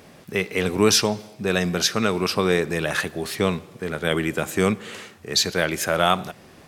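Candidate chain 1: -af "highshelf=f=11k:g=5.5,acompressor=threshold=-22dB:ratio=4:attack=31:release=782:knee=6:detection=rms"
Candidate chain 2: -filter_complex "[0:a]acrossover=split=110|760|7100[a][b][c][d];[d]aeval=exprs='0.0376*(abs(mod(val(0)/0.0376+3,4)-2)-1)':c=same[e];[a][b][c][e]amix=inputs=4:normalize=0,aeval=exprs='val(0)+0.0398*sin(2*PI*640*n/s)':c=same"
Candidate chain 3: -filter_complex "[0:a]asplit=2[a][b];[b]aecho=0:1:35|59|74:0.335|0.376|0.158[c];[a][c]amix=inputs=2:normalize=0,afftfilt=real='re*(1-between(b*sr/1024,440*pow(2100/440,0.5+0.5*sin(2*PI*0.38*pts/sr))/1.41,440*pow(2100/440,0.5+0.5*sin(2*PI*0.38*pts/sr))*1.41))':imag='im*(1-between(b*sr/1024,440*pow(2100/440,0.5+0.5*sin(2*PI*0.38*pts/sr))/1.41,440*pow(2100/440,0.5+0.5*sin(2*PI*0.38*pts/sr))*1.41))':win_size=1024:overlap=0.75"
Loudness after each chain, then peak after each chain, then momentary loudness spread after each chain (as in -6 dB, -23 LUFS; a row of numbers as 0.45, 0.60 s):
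-28.0, -22.5, -22.5 LUFS; -9.5, -5.0, -5.0 dBFS; 8, 7, 10 LU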